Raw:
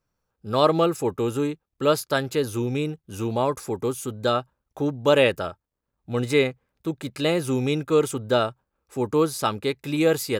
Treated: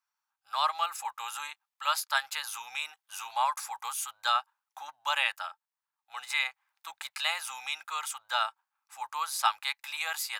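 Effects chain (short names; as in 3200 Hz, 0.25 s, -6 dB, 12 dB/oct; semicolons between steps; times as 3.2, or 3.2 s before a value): vocal rider within 3 dB 0.5 s; elliptic high-pass 830 Hz, stop band 50 dB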